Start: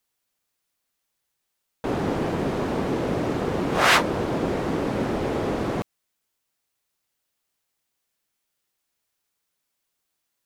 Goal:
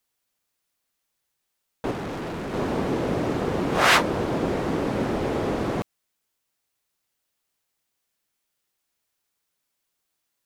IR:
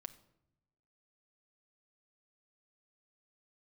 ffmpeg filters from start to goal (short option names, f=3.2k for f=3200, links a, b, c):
-filter_complex "[0:a]asettb=1/sr,asplit=3[a][b][c];[a]atrim=end=1.914[d];[b]atrim=start=1.91:end=2.54,asetpts=PTS-STARTPTS,afade=t=in:d=0.004:c=qsin,afade=t=out:st=0.626:d=0.004:c=qsin,volume=30dB,asoftclip=hard,volume=-30dB[e];[c]atrim=start=2.536[f];[d][e]acrossfade=d=0.004:c1=hsin:c2=qsin[g];[g][f]acrossfade=d=0.004:c1=qsin:c2=hsin"